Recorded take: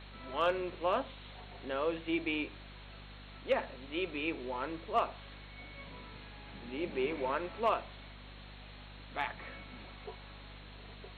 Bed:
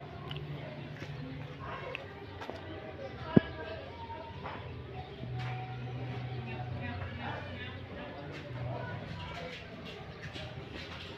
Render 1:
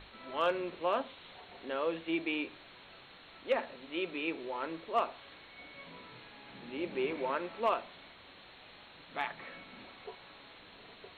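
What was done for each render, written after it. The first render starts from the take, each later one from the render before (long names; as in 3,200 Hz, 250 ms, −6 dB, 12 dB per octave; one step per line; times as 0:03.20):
mains-hum notches 50/100/150/200/250 Hz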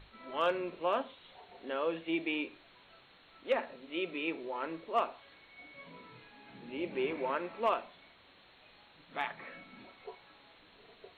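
noise reduction from a noise print 6 dB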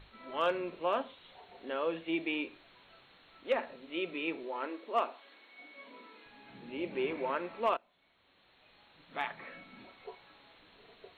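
0:04.44–0:06.26: linear-phase brick-wall high-pass 200 Hz
0:07.77–0:09.17: fade in, from −23 dB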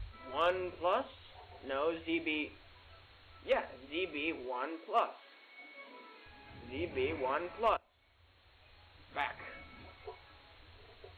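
low shelf with overshoot 120 Hz +12 dB, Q 3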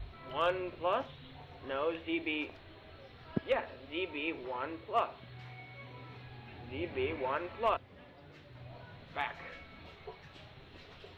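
mix in bed −12 dB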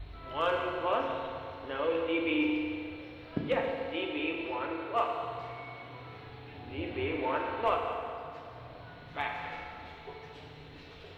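delay that plays each chunk backwards 128 ms, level −12.5 dB
feedback delay network reverb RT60 2.6 s, low-frequency decay 0.7×, high-frequency decay 0.75×, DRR 0 dB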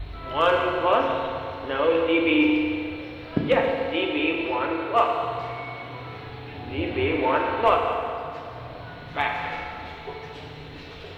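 level +9.5 dB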